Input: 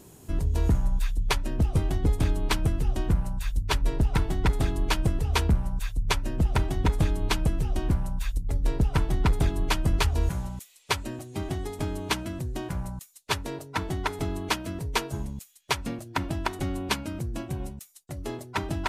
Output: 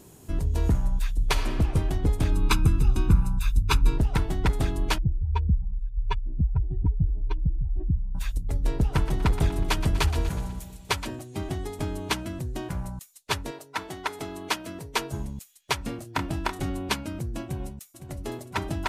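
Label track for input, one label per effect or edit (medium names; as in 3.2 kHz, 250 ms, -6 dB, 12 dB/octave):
1.140000	1.550000	reverb throw, RT60 1.9 s, DRR 5.5 dB
2.320000	3.980000	comb 0.8 ms, depth 80%
4.980000	8.150000	spectral contrast enhancement exponent 2.4
8.720000	11.150000	two-band feedback delay split 640 Hz, lows 173 ms, highs 122 ms, level -11.5 dB
13.500000	14.980000	high-pass 680 Hz -> 230 Hz 6 dB/octave
15.780000	16.700000	doubling 28 ms -8 dB
17.430000	18.170000	echo throw 510 ms, feedback 85%, level -11 dB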